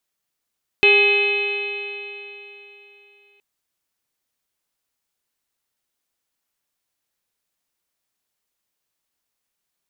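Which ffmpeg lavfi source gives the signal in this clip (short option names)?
-f lavfi -i "aevalsrc='0.158*pow(10,-3*t/3.34)*sin(2*PI*404.61*t)+0.0447*pow(10,-3*t/3.34)*sin(2*PI*812.83*t)+0.0158*pow(10,-3*t/3.34)*sin(2*PI*1228.25*t)+0.0224*pow(10,-3*t/3.34)*sin(2*PI*1654.33*t)+0.0562*pow(10,-3*t/3.34)*sin(2*PI*2094.38*t)+0.299*pow(10,-3*t/3.34)*sin(2*PI*2551.54*t)+0.075*pow(10,-3*t/3.34)*sin(2*PI*3028.73*t)+0.0376*pow(10,-3*t/3.34)*sin(2*PI*3528.66*t)+0.0282*pow(10,-3*t/3.34)*sin(2*PI*4053.77*t)':d=2.57:s=44100"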